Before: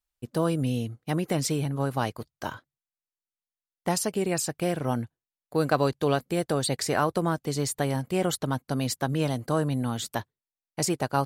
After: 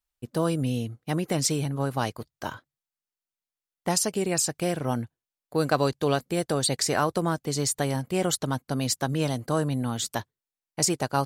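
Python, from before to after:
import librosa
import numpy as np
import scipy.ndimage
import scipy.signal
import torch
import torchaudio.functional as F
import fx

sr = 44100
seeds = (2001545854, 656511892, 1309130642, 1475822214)

y = fx.dynamic_eq(x, sr, hz=6400.0, q=0.87, threshold_db=-46.0, ratio=4.0, max_db=6)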